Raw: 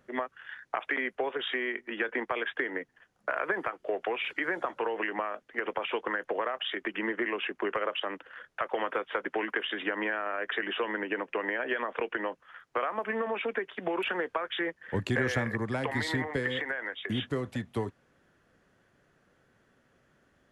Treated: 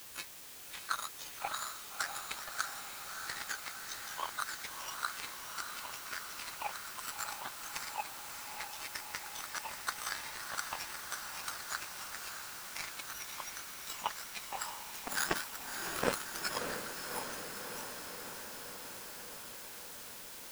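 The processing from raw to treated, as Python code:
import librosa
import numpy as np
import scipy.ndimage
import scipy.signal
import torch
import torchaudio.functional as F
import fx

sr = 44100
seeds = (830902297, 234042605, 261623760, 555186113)

p1 = fx.octave_mirror(x, sr, pivot_hz=1400.0)
p2 = scipy.signal.sosfilt(scipy.signal.butter(2, 130.0, 'highpass', fs=sr, output='sos'), p1)
p3 = fx.low_shelf(p2, sr, hz=210.0, db=9.5)
p4 = fx.power_curve(p3, sr, exponent=3.0)
p5 = fx.quant_dither(p4, sr, seeds[0], bits=8, dither='triangular')
p6 = p4 + (p5 * 10.0 ** (-8.0 / 20.0))
p7 = fx.formant_shift(p6, sr, semitones=5)
p8 = p7 + fx.echo_diffused(p7, sr, ms=636, feedback_pct=71, wet_db=-6.0, dry=0)
y = p8 * 10.0 ** (5.5 / 20.0)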